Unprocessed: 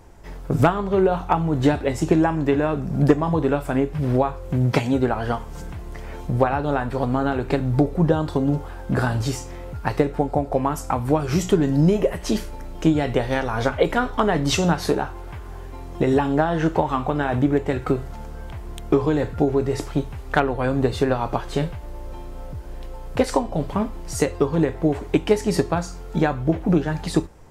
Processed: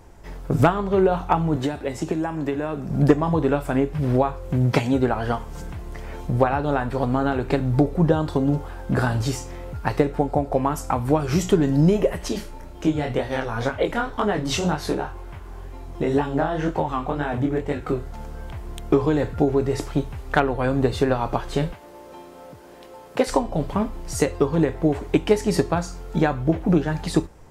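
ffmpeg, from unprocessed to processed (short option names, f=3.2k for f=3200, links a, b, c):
-filter_complex "[0:a]asettb=1/sr,asplit=3[a][b][c];[a]atrim=end=1.564[d];[b]atrim=start=1.56:end=2.89,asetpts=PTS-STARTPTS,afade=t=in:d=0.004:c=qsin,afade=t=out:st=1.326:d=0.004:c=qsin,acrossover=split=160|6900[e][f][g];[e]acompressor=threshold=-39dB:ratio=4[h];[f]acompressor=threshold=-23dB:ratio=4[i];[g]acompressor=threshold=-46dB:ratio=4[j];[h][i][j]amix=inputs=3:normalize=0[k];[c]atrim=start=2.886[l];[d][k]acrossfade=d=0.004:c1=hsin:c2=qsin[m];[m][l]acrossfade=d=0.004:c1=qsin:c2=hsin,asettb=1/sr,asplit=3[n][o][p];[n]atrim=end=12.284[q];[o]atrim=start=12.28:end=18.14,asetpts=PTS-STARTPTS,afade=t=in:d=0.004:c=qsin,afade=t=out:st=5.856:d=0.004:c=qsin,flanger=delay=19.5:depth=7:speed=2[r];[p]atrim=start=18.136[s];[q][r]acrossfade=d=0.004:c1=hsin:c2=qsin[t];[t][s]acrossfade=d=0.004:c1=qsin:c2=hsin,asettb=1/sr,asplit=3[u][v][w];[u]atrim=end=21.734[x];[v]atrim=start=21.73:end=23.27,asetpts=PTS-STARTPTS,afade=t=in:d=0.004:c=qsin,afade=t=out:st=1.536:d=0.004:c=qsin,highpass=240[y];[w]atrim=start=23.266[z];[x][y]acrossfade=d=0.004:c1=hsin:c2=qsin[aa];[aa][z]acrossfade=d=0.004:c1=qsin:c2=hsin"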